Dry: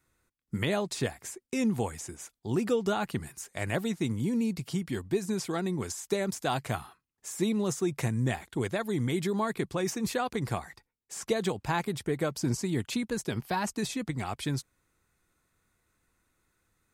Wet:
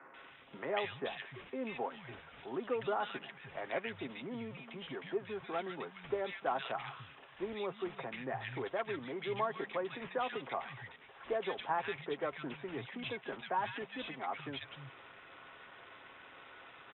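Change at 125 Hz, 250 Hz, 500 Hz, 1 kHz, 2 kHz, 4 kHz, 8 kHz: -18.5 dB, -14.5 dB, -6.0 dB, -2.5 dB, -4.0 dB, -7.0 dB, under -40 dB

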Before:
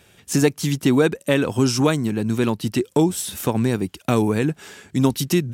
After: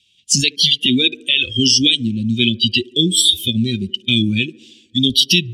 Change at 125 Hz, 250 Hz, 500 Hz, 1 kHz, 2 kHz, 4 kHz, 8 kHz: -0.5 dB, +1.0 dB, -8.0 dB, under -30 dB, +7.5 dB, +19.5 dB, +9.0 dB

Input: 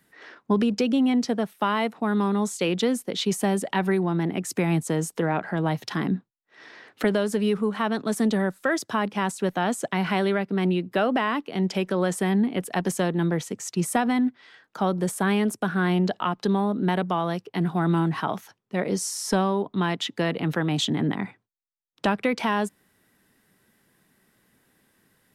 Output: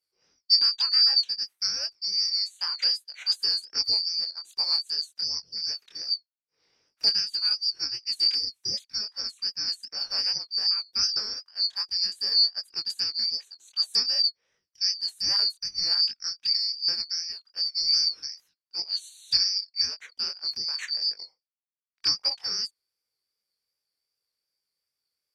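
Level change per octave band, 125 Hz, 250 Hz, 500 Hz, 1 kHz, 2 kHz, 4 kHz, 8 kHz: under -30 dB, under -30 dB, under -25 dB, -21.5 dB, -13.5 dB, +13.5 dB, -2.0 dB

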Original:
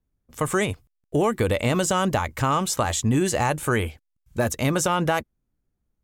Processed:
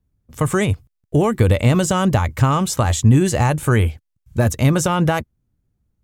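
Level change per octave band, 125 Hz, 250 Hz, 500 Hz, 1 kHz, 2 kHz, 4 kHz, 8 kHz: +11.0, +6.5, +3.5, +2.5, +2.0, +2.0, +2.0 dB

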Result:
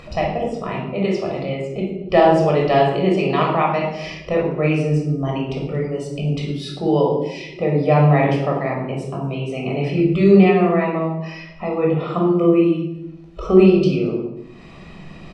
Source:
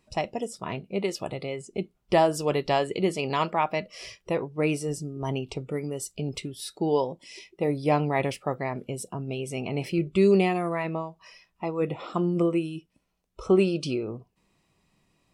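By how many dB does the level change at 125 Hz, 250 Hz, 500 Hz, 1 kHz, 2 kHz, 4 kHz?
+12.0, +10.5, +9.0, +8.0, +7.5, +4.5 dB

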